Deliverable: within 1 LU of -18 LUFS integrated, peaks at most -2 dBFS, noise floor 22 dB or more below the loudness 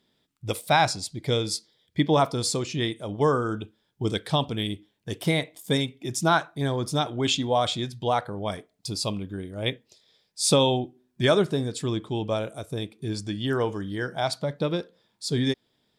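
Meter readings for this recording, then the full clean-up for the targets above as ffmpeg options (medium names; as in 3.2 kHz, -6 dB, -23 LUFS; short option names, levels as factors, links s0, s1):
loudness -26.5 LUFS; peak level -9.0 dBFS; loudness target -18.0 LUFS
-> -af "volume=2.66,alimiter=limit=0.794:level=0:latency=1"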